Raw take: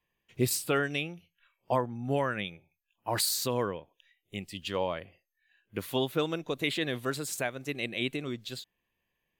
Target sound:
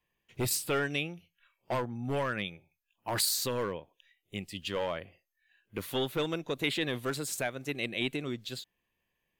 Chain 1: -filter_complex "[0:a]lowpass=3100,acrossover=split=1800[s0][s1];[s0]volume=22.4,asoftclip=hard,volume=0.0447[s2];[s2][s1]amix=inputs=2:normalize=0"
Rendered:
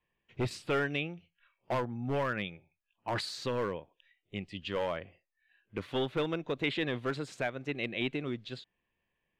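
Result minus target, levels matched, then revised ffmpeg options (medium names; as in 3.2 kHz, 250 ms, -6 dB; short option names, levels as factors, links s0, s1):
4 kHz band -3.0 dB
-filter_complex "[0:a]acrossover=split=1800[s0][s1];[s0]volume=22.4,asoftclip=hard,volume=0.0447[s2];[s2][s1]amix=inputs=2:normalize=0"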